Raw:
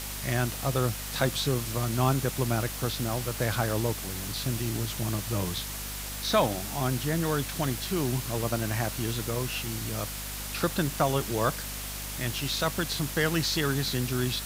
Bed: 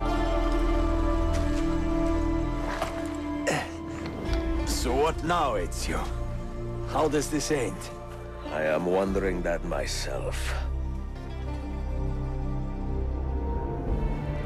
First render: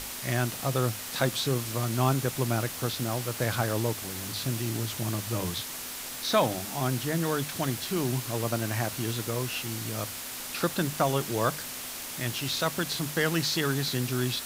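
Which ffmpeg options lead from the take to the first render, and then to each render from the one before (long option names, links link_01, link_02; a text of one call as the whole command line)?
ffmpeg -i in.wav -af "bandreject=frequency=50:width_type=h:width=6,bandreject=frequency=100:width_type=h:width=6,bandreject=frequency=150:width_type=h:width=6,bandreject=frequency=200:width_type=h:width=6" out.wav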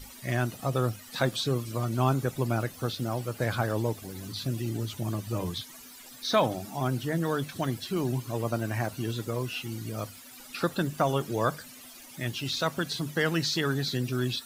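ffmpeg -i in.wav -af "afftdn=noise_reduction=16:noise_floor=-38" out.wav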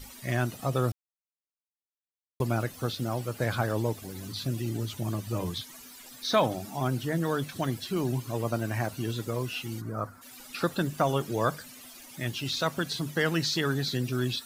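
ffmpeg -i in.wav -filter_complex "[0:a]asplit=3[link_01][link_02][link_03];[link_01]afade=type=out:start_time=9.8:duration=0.02[link_04];[link_02]highshelf=frequency=2000:width_type=q:width=3:gain=-13,afade=type=in:start_time=9.8:duration=0.02,afade=type=out:start_time=10.21:duration=0.02[link_05];[link_03]afade=type=in:start_time=10.21:duration=0.02[link_06];[link_04][link_05][link_06]amix=inputs=3:normalize=0,asplit=3[link_07][link_08][link_09];[link_07]atrim=end=0.92,asetpts=PTS-STARTPTS,afade=type=out:start_time=0.916:duration=0.004:curve=hsin[link_10];[link_08]atrim=start=0.92:end=2.4,asetpts=PTS-STARTPTS,volume=0[link_11];[link_09]atrim=start=2.4,asetpts=PTS-STARTPTS,afade=type=in:duration=0.004:curve=hsin[link_12];[link_10][link_11][link_12]concat=n=3:v=0:a=1" out.wav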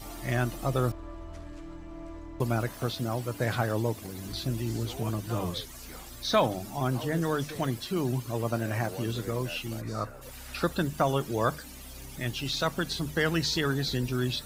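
ffmpeg -i in.wav -i bed.wav -filter_complex "[1:a]volume=-16.5dB[link_01];[0:a][link_01]amix=inputs=2:normalize=0" out.wav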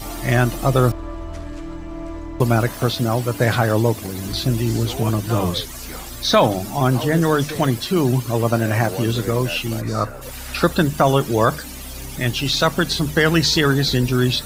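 ffmpeg -i in.wav -af "volume=11.5dB,alimiter=limit=-3dB:level=0:latency=1" out.wav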